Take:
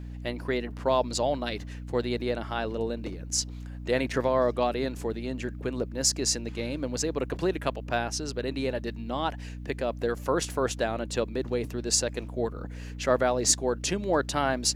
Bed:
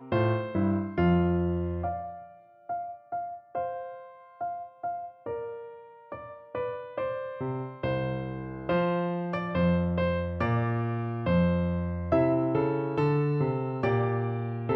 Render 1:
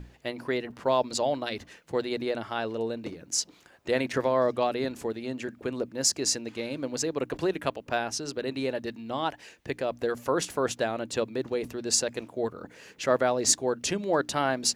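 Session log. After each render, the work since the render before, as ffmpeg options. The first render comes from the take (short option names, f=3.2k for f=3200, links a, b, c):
-af "bandreject=f=60:t=h:w=6,bandreject=f=120:t=h:w=6,bandreject=f=180:t=h:w=6,bandreject=f=240:t=h:w=6,bandreject=f=300:t=h:w=6"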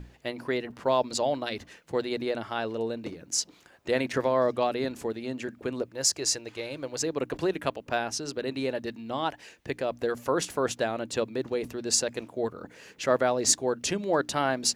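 -filter_complex "[0:a]asettb=1/sr,asplit=3[a][b][c];[a]atrim=end=5.824[d];[b]atrim=start=5.82:end=7.01,asetpts=PTS-STARTPTS,afade=t=in:d=0.004:c=qsin,afade=t=out:st=1.186:d=0.004:c=qsin,equalizer=f=230:t=o:w=0.68:g=-11.5[e];[c]atrim=start=7.006[f];[d][e]acrossfade=d=0.004:c1=hsin:c2=qsin[g];[g][f]acrossfade=d=0.004:c1=qsin:c2=hsin"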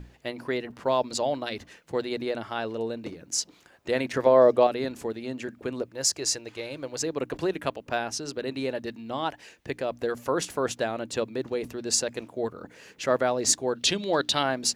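-filter_complex "[0:a]asettb=1/sr,asplit=3[a][b][c];[a]atrim=end=4.264[d];[b]atrim=start=4.26:end=4.67,asetpts=PTS-STARTPTS,afade=t=in:d=0.004:c=qsin,afade=t=out:st=0.406:d=0.004:c=qsin,equalizer=f=500:w=0.84:g=8.5[e];[c]atrim=start=4.666[f];[d][e]acrossfade=d=0.004:c1=hsin:c2=qsin[g];[g][f]acrossfade=d=0.004:c1=qsin:c2=hsin,asettb=1/sr,asplit=3[h][i][j];[h]atrim=end=13.754[k];[i]atrim=start=13.75:end=14.43,asetpts=PTS-STARTPTS,afade=t=in:d=0.004:c=qsin,afade=t=out:st=0.676:d=0.004:c=qsin,equalizer=f=3.7k:t=o:w=0.81:g=14[l];[j]atrim=start=14.426[m];[k][l]acrossfade=d=0.004:c1=hsin:c2=qsin[n];[n][m]acrossfade=d=0.004:c1=qsin:c2=hsin"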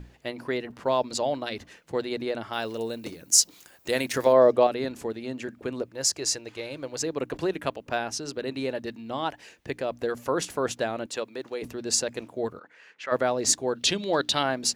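-filter_complex "[0:a]asettb=1/sr,asplit=3[a][b][c];[a]atrim=end=2.534[d];[b]atrim=start=2.53:end=4.33,asetpts=PTS-STARTPTS,afade=t=in:d=0.004:c=qsin,afade=t=out:st=1.796:d=0.004:c=qsin,aemphasis=mode=production:type=75fm[e];[c]atrim=start=4.326[f];[d][e]acrossfade=d=0.004:c1=hsin:c2=qsin[g];[g][f]acrossfade=d=0.004:c1=qsin:c2=hsin,asettb=1/sr,asplit=3[h][i][j];[h]atrim=end=11.064[k];[i]atrim=start=11.06:end=11.62,asetpts=PTS-STARTPTS,afade=t=in:d=0.004:c=qsin,afade=t=out:st=0.556:d=0.004:c=qsin,highpass=f=580:p=1[l];[j]atrim=start=11.616[m];[k][l]acrossfade=d=0.004:c1=hsin:c2=qsin[n];[n][m]acrossfade=d=0.004:c1=qsin:c2=hsin,asplit=3[o][p][q];[o]afade=t=out:st=12.58:d=0.02[r];[p]bandpass=f=1.7k:t=q:w=1.1,afade=t=in:st=12.58:d=0.02,afade=t=out:st=13.11:d=0.02[s];[q]afade=t=in:st=13.11:d=0.02[t];[r][s][t]amix=inputs=3:normalize=0"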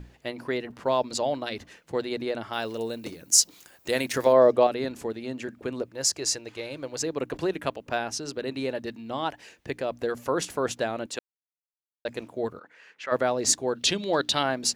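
-filter_complex "[0:a]asplit=3[a][b][c];[a]atrim=end=11.19,asetpts=PTS-STARTPTS,afade=t=out:st=11.186:d=0.004:c=hsin[d];[b]atrim=start=11.19:end=12.05,asetpts=PTS-STARTPTS,volume=0[e];[c]atrim=start=12.05,asetpts=PTS-STARTPTS,afade=t=in:d=0.004:c=hsin[f];[d][e][f]concat=n=3:v=0:a=1"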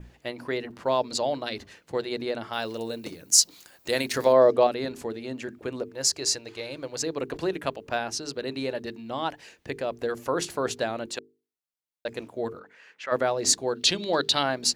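-af "bandreject=f=50:t=h:w=6,bandreject=f=100:t=h:w=6,bandreject=f=150:t=h:w=6,bandreject=f=200:t=h:w=6,bandreject=f=250:t=h:w=6,bandreject=f=300:t=h:w=6,bandreject=f=350:t=h:w=6,bandreject=f=400:t=h:w=6,bandreject=f=450:t=h:w=6,adynamicequalizer=threshold=0.00562:dfrequency=4300:dqfactor=4.2:tfrequency=4300:tqfactor=4.2:attack=5:release=100:ratio=0.375:range=3:mode=boostabove:tftype=bell"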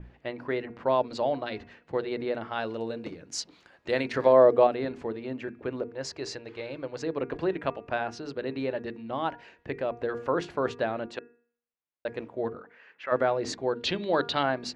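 -af "lowpass=2.4k,bandreject=f=237.4:t=h:w=4,bandreject=f=474.8:t=h:w=4,bandreject=f=712.2:t=h:w=4,bandreject=f=949.6:t=h:w=4,bandreject=f=1.187k:t=h:w=4,bandreject=f=1.4244k:t=h:w=4,bandreject=f=1.6618k:t=h:w=4,bandreject=f=1.8992k:t=h:w=4,bandreject=f=2.1366k:t=h:w=4,bandreject=f=2.374k:t=h:w=4,bandreject=f=2.6114k:t=h:w=4"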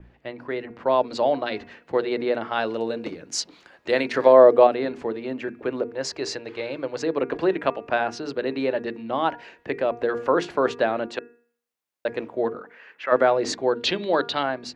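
-filter_complex "[0:a]acrossover=split=190[a][b];[a]alimiter=level_in=19dB:limit=-24dB:level=0:latency=1:release=182,volume=-19dB[c];[b]dynaudnorm=f=260:g=7:m=7dB[d];[c][d]amix=inputs=2:normalize=0"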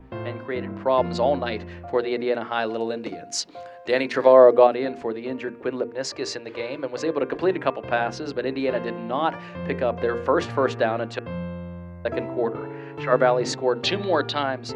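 -filter_complex "[1:a]volume=-7.5dB[a];[0:a][a]amix=inputs=2:normalize=0"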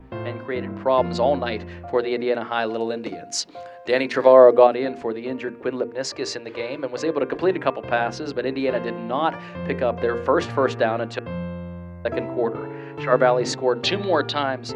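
-af "volume=1.5dB"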